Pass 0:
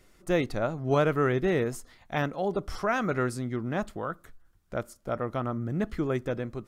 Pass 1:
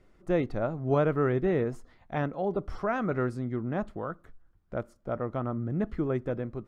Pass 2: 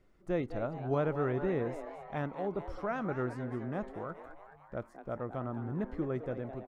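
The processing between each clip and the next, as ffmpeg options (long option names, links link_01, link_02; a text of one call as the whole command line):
ffmpeg -i in.wav -af "lowpass=frequency=1100:poles=1" out.wav
ffmpeg -i in.wav -filter_complex "[0:a]asplit=7[link_01][link_02][link_03][link_04][link_05][link_06][link_07];[link_02]adelay=213,afreqshift=140,volume=-12dB[link_08];[link_03]adelay=426,afreqshift=280,volume=-16.9dB[link_09];[link_04]adelay=639,afreqshift=420,volume=-21.8dB[link_10];[link_05]adelay=852,afreqshift=560,volume=-26.6dB[link_11];[link_06]adelay=1065,afreqshift=700,volume=-31.5dB[link_12];[link_07]adelay=1278,afreqshift=840,volume=-36.4dB[link_13];[link_01][link_08][link_09][link_10][link_11][link_12][link_13]amix=inputs=7:normalize=0,volume=-6dB" out.wav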